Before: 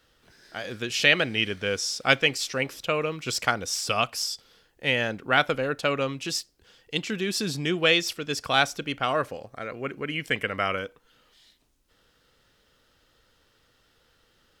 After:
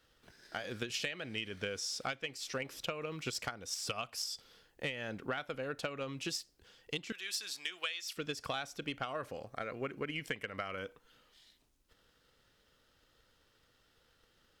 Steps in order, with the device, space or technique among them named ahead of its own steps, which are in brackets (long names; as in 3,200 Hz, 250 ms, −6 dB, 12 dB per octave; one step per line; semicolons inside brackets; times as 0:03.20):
0:07.12–0:08.17: Bessel high-pass filter 1,600 Hz, order 2
drum-bus smash (transient designer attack +8 dB, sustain +3 dB; downward compressor 12 to 1, threshold −27 dBFS, peak gain reduction 20 dB; soft clipping −17 dBFS, distortion −20 dB)
level −6.5 dB